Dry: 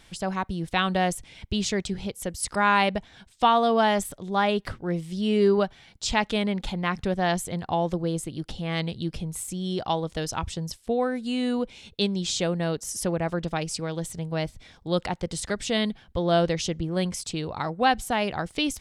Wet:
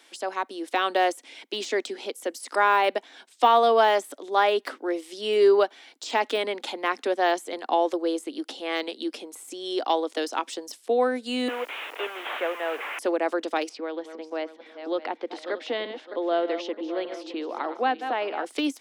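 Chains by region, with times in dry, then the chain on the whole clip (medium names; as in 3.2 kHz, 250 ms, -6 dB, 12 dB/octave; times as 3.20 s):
11.48–12.99 s: one-bit delta coder 16 kbps, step -29.5 dBFS + high-pass 600 Hz + word length cut 10-bit, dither triangular
13.69–18.45 s: backward echo that repeats 306 ms, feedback 55%, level -12 dB + compression 1.5:1, threshold -29 dBFS + distance through air 310 m
whole clip: de-esser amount 85%; steep high-pass 260 Hz 72 dB/octave; level rider gain up to 3.5 dB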